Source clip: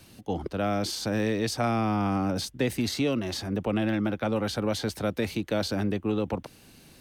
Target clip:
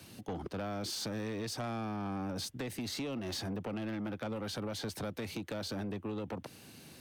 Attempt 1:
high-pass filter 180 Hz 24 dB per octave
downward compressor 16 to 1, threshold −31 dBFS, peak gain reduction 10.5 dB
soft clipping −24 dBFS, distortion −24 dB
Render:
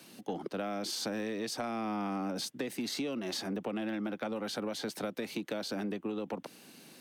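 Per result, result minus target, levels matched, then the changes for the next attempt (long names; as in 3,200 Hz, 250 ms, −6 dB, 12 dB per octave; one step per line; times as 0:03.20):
soft clipping: distortion −11 dB; 125 Hz band −7.5 dB
change: soft clipping −32.5 dBFS, distortion −13 dB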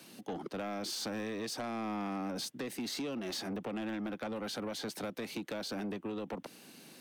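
125 Hz band −6.5 dB
change: high-pass filter 81 Hz 24 dB per octave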